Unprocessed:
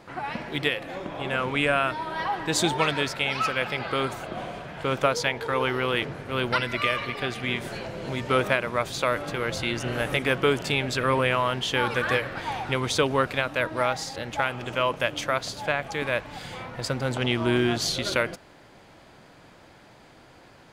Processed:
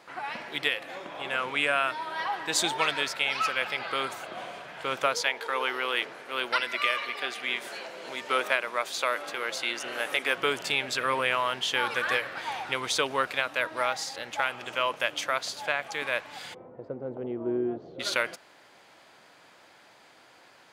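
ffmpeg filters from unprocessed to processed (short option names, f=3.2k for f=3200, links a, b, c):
-filter_complex "[0:a]asettb=1/sr,asplit=3[a][b][c];[a]atrim=end=5.214[d];[b]atrim=start=5.21:end=10.37,asetpts=PTS-STARTPTS,afade=t=in:d=0.004:c=qsin,afade=t=out:st=5.156:d=0.004:c=qsin,highpass=260[e];[c]atrim=start=10.366[f];[d][e]acrossfade=d=0.004:c1=hsin:c2=qsin[g];[g][f]acrossfade=d=0.004:c1=qsin:c2=hsin,asplit=3[h][i][j];[h]afade=t=out:st=16.53:d=0.02[k];[i]lowpass=f=420:t=q:w=1.7,afade=t=in:st=16.53:d=0.02,afade=t=out:st=17.99:d=0.02[l];[j]afade=t=in:st=17.99:d=0.02[m];[k][l][m]amix=inputs=3:normalize=0,highpass=f=890:p=1"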